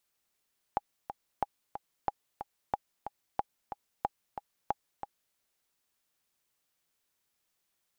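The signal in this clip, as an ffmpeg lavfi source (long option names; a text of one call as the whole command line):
ffmpeg -f lavfi -i "aevalsrc='pow(10,(-15-9.5*gte(mod(t,2*60/183),60/183))/20)*sin(2*PI*819*mod(t,60/183))*exp(-6.91*mod(t,60/183)/0.03)':duration=4.59:sample_rate=44100" out.wav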